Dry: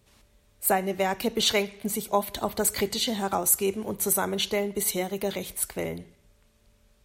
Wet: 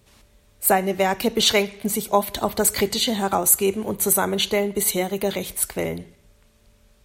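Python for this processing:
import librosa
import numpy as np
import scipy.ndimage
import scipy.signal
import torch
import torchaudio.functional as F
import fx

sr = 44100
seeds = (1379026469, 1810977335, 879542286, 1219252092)

y = fx.notch(x, sr, hz=5400.0, q=6.9, at=(2.98, 5.44))
y = F.gain(torch.from_numpy(y), 5.5).numpy()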